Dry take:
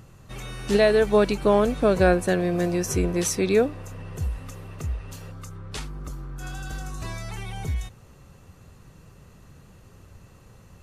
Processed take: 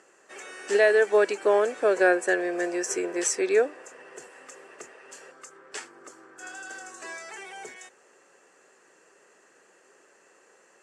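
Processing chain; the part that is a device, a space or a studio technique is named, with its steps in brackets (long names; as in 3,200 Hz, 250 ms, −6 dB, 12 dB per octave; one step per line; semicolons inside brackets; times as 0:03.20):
phone speaker on a table (loudspeaker in its box 370–9,000 Hz, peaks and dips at 380 Hz +4 dB, 1,100 Hz −3 dB, 1,700 Hz +9 dB, 3,800 Hz −9 dB, 7,700 Hz +8 dB)
level −2 dB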